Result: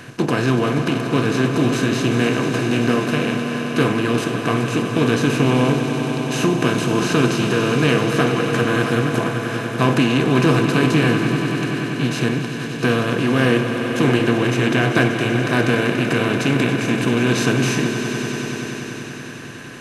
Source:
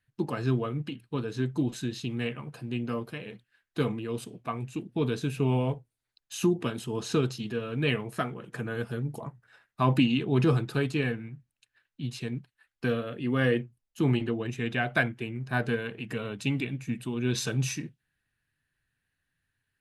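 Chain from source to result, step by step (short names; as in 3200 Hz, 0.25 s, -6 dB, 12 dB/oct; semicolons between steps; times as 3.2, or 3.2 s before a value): per-bin compression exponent 0.4; swelling echo 96 ms, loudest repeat 5, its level -12 dB; gain +3 dB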